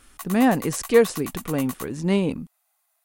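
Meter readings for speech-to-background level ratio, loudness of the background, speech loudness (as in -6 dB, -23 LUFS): 14.5 dB, -37.0 LUFS, -22.5 LUFS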